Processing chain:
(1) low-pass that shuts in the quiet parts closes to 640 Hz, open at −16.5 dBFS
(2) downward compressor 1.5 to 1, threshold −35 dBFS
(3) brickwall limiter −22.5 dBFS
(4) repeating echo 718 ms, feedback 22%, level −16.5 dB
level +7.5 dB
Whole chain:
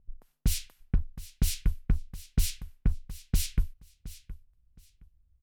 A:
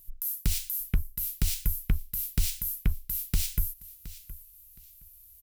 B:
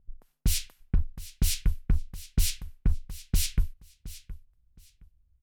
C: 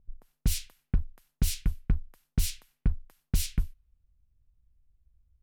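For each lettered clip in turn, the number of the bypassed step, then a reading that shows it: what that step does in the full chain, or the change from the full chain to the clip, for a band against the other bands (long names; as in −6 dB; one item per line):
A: 1, 8 kHz band +3.5 dB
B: 2, average gain reduction 5.0 dB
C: 4, change in momentary loudness spread −12 LU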